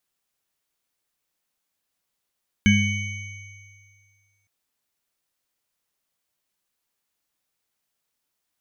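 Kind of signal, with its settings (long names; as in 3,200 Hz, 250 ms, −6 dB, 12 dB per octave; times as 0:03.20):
inharmonic partials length 1.81 s, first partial 101 Hz, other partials 205/1,640/2,240/3,010/6,280 Hz, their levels 5.5/−10/−2/−8/−14 dB, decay 1.97 s, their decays 0.83/0.37/2.03/1.46/2.40 s, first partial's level −18 dB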